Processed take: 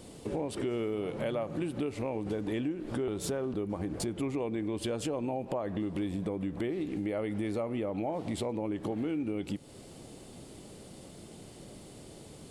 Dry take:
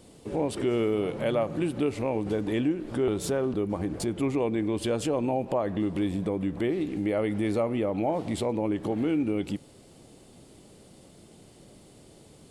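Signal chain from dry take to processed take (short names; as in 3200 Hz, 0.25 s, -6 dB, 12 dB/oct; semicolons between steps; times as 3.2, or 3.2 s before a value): compressor 3:1, threshold -37 dBFS, peak gain reduction 11.5 dB; gain +3.5 dB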